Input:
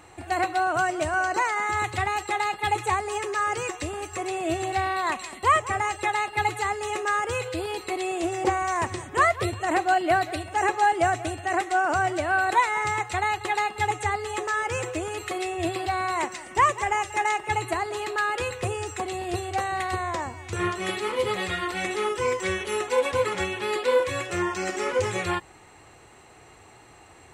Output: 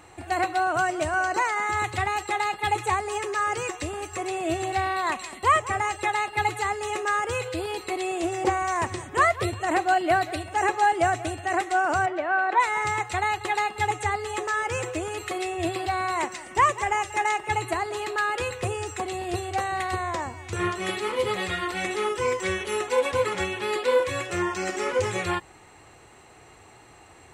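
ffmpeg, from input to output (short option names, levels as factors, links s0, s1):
-filter_complex "[0:a]asplit=3[s0][s1][s2];[s0]afade=t=out:st=12.05:d=0.02[s3];[s1]highpass=310,lowpass=2300,afade=t=in:st=12.05:d=0.02,afade=t=out:st=12.59:d=0.02[s4];[s2]afade=t=in:st=12.59:d=0.02[s5];[s3][s4][s5]amix=inputs=3:normalize=0"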